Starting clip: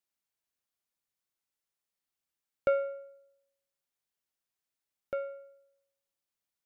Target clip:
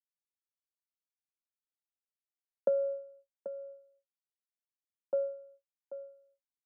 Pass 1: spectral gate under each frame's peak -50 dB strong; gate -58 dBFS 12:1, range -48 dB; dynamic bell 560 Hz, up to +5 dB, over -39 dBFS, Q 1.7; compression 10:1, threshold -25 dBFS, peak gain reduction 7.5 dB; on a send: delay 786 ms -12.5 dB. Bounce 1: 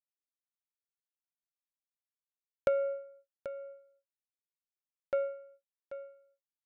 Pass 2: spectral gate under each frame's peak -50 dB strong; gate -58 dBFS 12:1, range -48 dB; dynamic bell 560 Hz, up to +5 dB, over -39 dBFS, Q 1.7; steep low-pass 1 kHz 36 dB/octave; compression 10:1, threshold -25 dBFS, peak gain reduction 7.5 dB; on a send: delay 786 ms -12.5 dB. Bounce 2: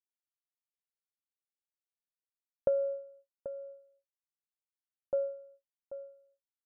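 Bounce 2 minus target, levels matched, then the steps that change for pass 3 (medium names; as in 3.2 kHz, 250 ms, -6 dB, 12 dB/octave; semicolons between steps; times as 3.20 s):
125 Hz band +8.0 dB
add after compression: steep high-pass 170 Hz 72 dB/octave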